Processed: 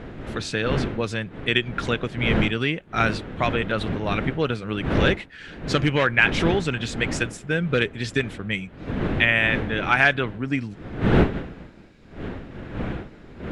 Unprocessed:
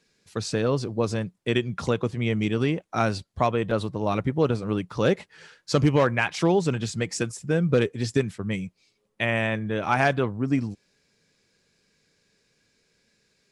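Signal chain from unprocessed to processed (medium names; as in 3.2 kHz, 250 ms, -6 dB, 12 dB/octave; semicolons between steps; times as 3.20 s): wind noise 310 Hz -27 dBFS; high-order bell 2.3 kHz +10.5 dB; trim -2 dB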